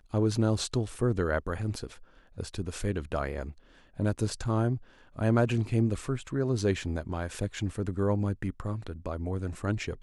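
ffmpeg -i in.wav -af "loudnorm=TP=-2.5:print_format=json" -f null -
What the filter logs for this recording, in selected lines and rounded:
"input_i" : "-31.3",
"input_tp" : "-12.2",
"input_lra" : "4.2",
"input_thresh" : "-41.6",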